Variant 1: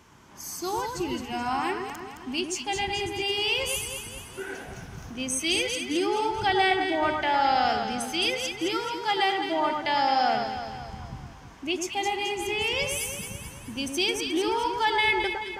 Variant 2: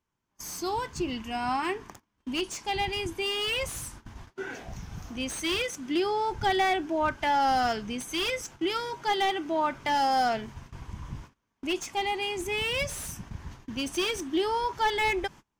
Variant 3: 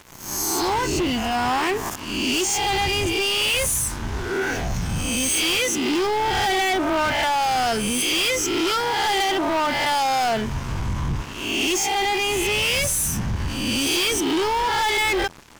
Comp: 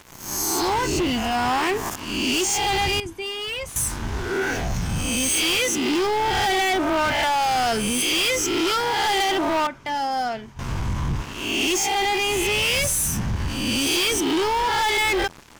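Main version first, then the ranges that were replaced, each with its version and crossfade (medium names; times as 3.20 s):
3
3.00–3.76 s: from 2
9.67–10.59 s: from 2
not used: 1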